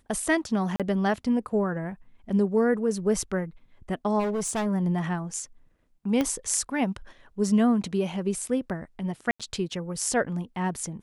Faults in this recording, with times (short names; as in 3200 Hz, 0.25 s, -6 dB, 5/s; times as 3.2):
0.76–0.8 gap 37 ms
4.19–4.67 clipped -24.5 dBFS
6.21 pop -13 dBFS
9.31–9.4 gap 86 ms